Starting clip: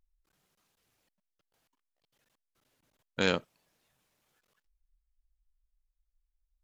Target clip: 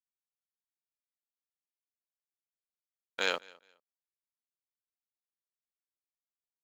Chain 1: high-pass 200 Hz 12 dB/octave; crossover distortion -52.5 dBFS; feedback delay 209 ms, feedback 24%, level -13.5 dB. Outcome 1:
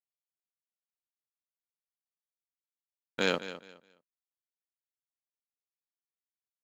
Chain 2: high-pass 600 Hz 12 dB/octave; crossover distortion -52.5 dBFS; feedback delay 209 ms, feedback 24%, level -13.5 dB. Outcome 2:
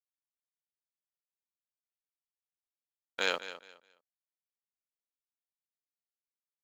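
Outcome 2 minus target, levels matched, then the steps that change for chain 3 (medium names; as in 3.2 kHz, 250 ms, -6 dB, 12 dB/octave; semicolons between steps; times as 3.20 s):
echo-to-direct +11 dB
change: feedback delay 209 ms, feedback 24%, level -24.5 dB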